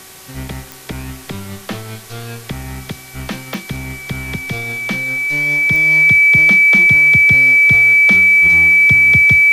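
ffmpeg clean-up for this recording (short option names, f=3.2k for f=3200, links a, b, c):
-af "adeclick=t=4,bandreject=f=379.5:t=h:w=4,bandreject=f=759:t=h:w=4,bandreject=f=1.1385k:t=h:w=4,bandreject=f=1.518k:t=h:w=4,bandreject=f=1.8975k:t=h:w=4,bandreject=f=2.277k:t=h:w=4,bandreject=f=2.3k:w=30,afwtdn=0.014"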